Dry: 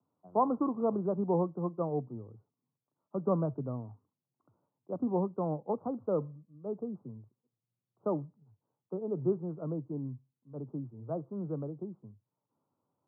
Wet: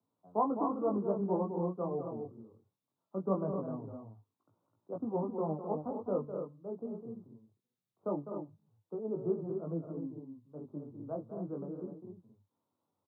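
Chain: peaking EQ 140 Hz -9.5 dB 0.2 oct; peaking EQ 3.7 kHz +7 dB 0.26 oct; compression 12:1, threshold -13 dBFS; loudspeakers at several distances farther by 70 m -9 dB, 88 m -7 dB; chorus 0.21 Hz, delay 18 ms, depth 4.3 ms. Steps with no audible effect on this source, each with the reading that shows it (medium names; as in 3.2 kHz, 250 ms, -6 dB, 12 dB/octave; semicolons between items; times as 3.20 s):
peaking EQ 3.7 kHz: input has nothing above 1.3 kHz; compression, threshold -13 dBFS: peak at its input -15.5 dBFS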